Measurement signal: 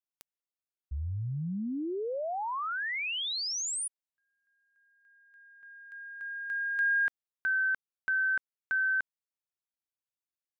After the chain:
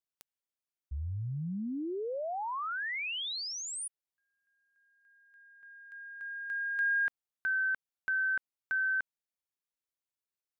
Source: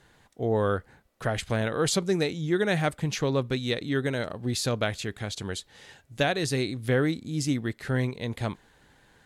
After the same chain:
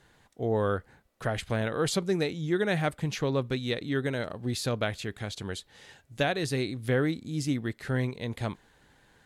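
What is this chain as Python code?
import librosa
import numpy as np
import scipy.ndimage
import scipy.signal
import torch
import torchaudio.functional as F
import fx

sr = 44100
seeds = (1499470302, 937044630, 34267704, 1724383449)

y = fx.dynamic_eq(x, sr, hz=6700.0, q=1.1, threshold_db=-46.0, ratio=4.0, max_db=-4)
y = F.gain(torch.from_numpy(y), -2.0).numpy()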